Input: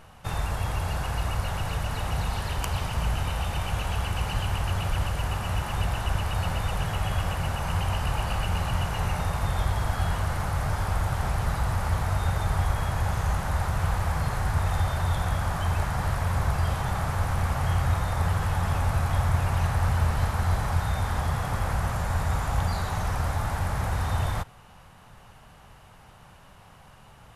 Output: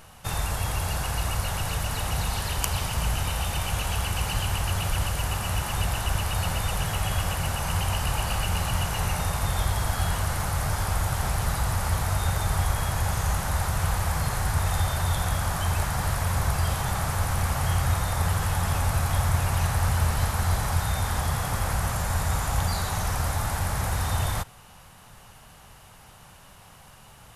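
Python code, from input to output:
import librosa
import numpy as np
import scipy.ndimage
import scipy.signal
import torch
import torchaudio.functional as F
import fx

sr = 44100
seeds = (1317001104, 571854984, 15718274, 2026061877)

y = fx.high_shelf(x, sr, hz=4200.0, db=11.5)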